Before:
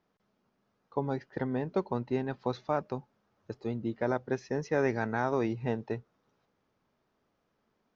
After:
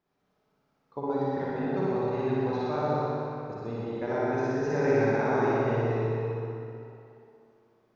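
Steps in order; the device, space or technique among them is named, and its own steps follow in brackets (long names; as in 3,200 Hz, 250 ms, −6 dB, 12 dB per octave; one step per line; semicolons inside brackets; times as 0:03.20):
tunnel (flutter between parallel walls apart 10.4 metres, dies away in 1.4 s; convolution reverb RT60 2.8 s, pre-delay 36 ms, DRR −5 dB)
level −5.5 dB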